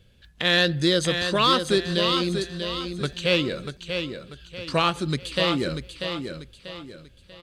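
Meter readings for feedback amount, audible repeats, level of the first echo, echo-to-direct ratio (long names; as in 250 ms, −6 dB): 37%, 4, −7.0 dB, −6.5 dB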